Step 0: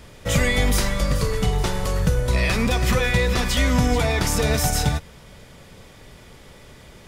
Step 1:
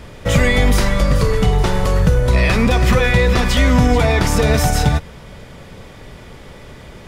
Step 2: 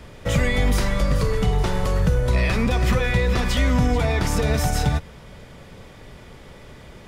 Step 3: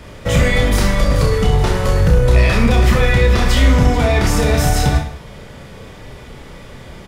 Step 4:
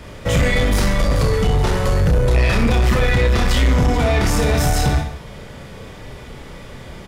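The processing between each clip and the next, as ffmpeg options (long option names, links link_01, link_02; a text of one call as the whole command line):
ffmpeg -i in.wav -filter_complex "[0:a]highshelf=frequency=3900:gain=-8.5,asplit=2[link_01][link_02];[link_02]alimiter=limit=-16dB:level=0:latency=1:release=97,volume=-1dB[link_03];[link_01][link_03]amix=inputs=2:normalize=0,volume=3dB" out.wav
ffmpeg -i in.wav -filter_complex "[0:a]acrossover=split=190[link_01][link_02];[link_02]acompressor=threshold=-17dB:ratio=2[link_03];[link_01][link_03]amix=inputs=2:normalize=0,volume=-5.5dB" out.wav
ffmpeg -i in.wav -filter_complex "[0:a]asoftclip=type=hard:threshold=-13.5dB,asplit=2[link_01][link_02];[link_02]aecho=0:1:30|64.5|104.2|149.8|202.3:0.631|0.398|0.251|0.158|0.1[link_03];[link_01][link_03]amix=inputs=2:normalize=0,volume=5dB" out.wav
ffmpeg -i in.wav -af "asoftclip=type=tanh:threshold=-9.5dB" out.wav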